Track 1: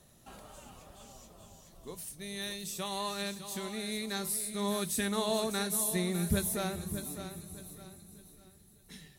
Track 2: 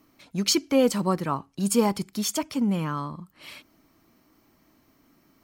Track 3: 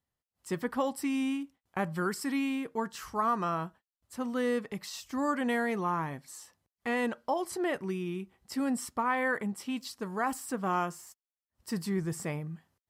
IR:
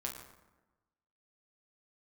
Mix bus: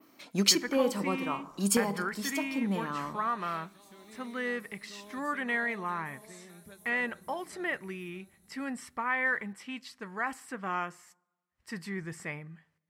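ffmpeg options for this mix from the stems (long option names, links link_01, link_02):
-filter_complex "[0:a]acrossover=split=170|580|2400[link_01][link_02][link_03][link_04];[link_01]acompressor=threshold=-57dB:ratio=4[link_05];[link_02]acompressor=threshold=-41dB:ratio=4[link_06];[link_03]acompressor=threshold=-39dB:ratio=4[link_07];[link_04]acompressor=threshold=-48dB:ratio=4[link_08];[link_05][link_06][link_07][link_08]amix=inputs=4:normalize=0,adelay=350,volume=-12.5dB[link_09];[1:a]highpass=230,acontrast=22,volume=-3dB,asplit=2[link_10][link_11];[link_11]volume=-16.5dB[link_12];[2:a]lowpass=11000,equalizer=frequency=2000:width_type=o:width=1.2:gain=13,volume=-7.5dB,asplit=3[link_13][link_14][link_15];[link_14]volume=-24dB[link_16];[link_15]apad=whole_len=239518[link_17];[link_10][link_17]sidechaincompress=threshold=-42dB:ratio=8:attack=16:release=710[link_18];[3:a]atrim=start_sample=2205[link_19];[link_12][link_16]amix=inputs=2:normalize=0[link_20];[link_20][link_19]afir=irnorm=-1:irlink=0[link_21];[link_09][link_18][link_13][link_21]amix=inputs=4:normalize=0,adynamicequalizer=threshold=0.00282:dfrequency=6800:dqfactor=0.78:tfrequency=6800:tqfactor=0.78:attack=5:release=100:ratio=0.375:range=2.5:mode=cutabove:tftype=bell"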